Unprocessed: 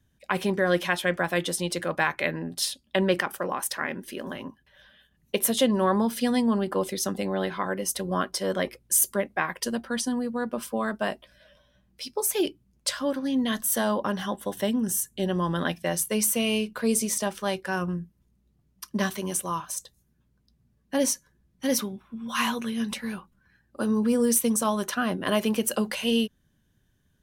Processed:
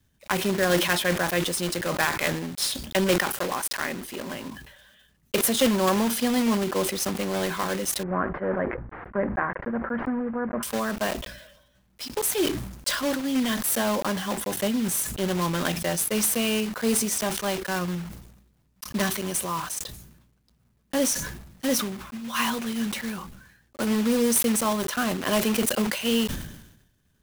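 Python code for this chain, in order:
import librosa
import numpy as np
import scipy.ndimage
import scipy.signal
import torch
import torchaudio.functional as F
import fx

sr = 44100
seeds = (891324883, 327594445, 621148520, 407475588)

y = fx.block_float(x, sr, bits=3)
y = fx.steep_lowpass(y, sr, hz=1800.0, slope=36, at=(8.03, 10.63))
y = fx.sustainer(y, sr, db_per_s=62.0)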